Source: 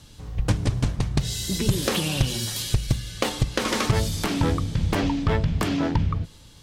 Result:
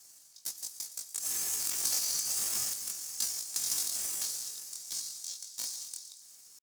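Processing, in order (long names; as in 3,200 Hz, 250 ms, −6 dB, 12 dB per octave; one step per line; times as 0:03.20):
lower of the sound and its delayed copy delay 3.7 ms
Butterworth high-pass 2,800 Hz 48 dB per octave
in parallel at −5 dB: sample-rate reduction 13,000 Hz, jitter 0%
on the sum: ring modulation 370 Hz
pitch shifter +10.5 semitones
delay with a high-pass on its return 116 ms, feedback 65%, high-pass 4,500 Hz, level −13.5 dB
convolution reverb RT60 1.8 s, pre-delay 89 ms, DRR 15.5 dB
level +2.5 dB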